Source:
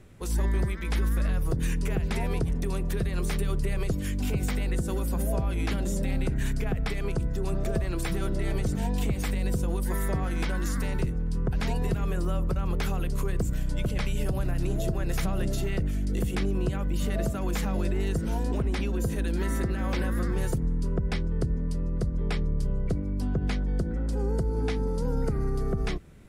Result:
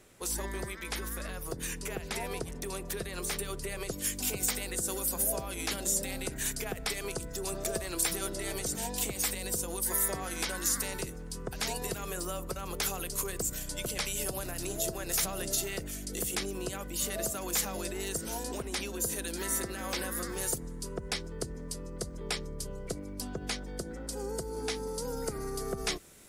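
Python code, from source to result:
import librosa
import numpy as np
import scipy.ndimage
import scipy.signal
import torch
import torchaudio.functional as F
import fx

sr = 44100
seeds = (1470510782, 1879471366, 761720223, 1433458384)

y = fx.rider(x, sr, range_db=10, speed_s=2.0)
y = fx.bass_treble(y, sr, bass_db=-14, treble_db=fx.steps((0.0, 8.0), (3.99, 15.0)))
y = F.gain(torch.from_numpy(y), -2.0).numpy()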